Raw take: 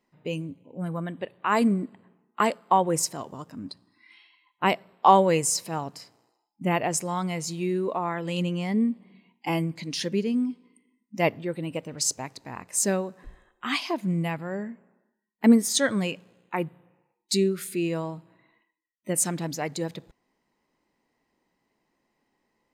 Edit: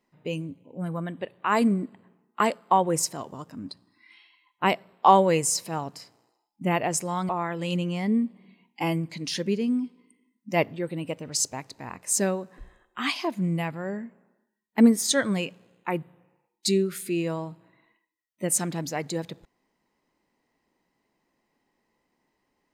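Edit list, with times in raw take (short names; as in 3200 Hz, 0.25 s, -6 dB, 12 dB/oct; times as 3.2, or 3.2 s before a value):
7.29–7.95 cut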